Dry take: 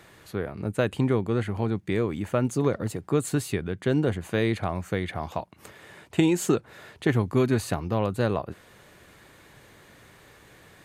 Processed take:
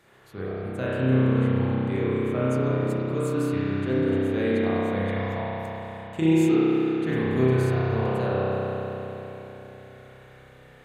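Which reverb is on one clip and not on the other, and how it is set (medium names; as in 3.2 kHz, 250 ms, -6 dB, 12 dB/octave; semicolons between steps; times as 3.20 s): spring tank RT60 3.9 s, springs 31 ms, chirp 70 ms, DRR -10 dB; trim -9.5 dB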